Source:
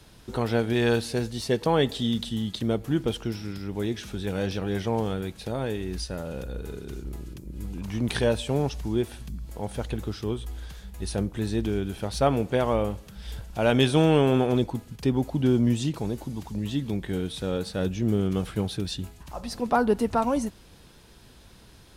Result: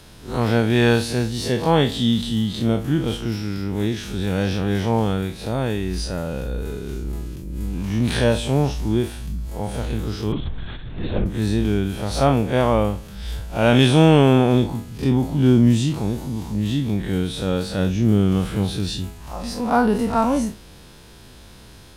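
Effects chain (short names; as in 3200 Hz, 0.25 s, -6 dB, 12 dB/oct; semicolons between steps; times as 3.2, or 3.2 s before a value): time blur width 83 ms; dynamic EQ 430 Hz, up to -4 dB, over -38 dBFS, Q 1.5; 10.32–11.26 LPC vocoder at 8 kHz whisper; gain +9 dB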